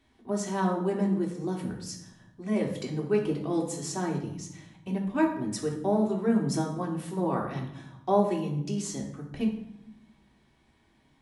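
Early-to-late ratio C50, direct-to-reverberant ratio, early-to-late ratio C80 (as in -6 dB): 7.0 dB, -2.0 dB, 10.5 dB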